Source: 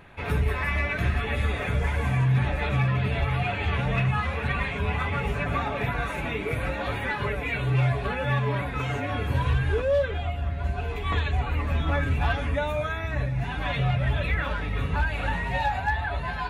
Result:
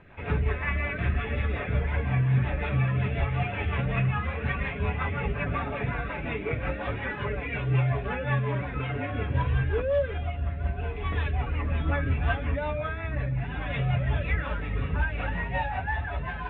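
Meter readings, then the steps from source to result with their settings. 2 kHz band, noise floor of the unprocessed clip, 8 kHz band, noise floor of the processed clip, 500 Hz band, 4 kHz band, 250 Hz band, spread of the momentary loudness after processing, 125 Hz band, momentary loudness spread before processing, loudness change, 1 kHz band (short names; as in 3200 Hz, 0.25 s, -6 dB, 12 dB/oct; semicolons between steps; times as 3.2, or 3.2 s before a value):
-3.0 dB, -31 dBFS, n/a, -35 dBFS, -2.5 dB, -7.0 dB, -1.5 dB, 6 LU, -1.5 dB, 5 LU, -2.0 dB, -4.0 dB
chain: rotary speaker horn 5.5 Hz; polynomial smoothing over 25 samples; MP2 64 kbps 16000 Hz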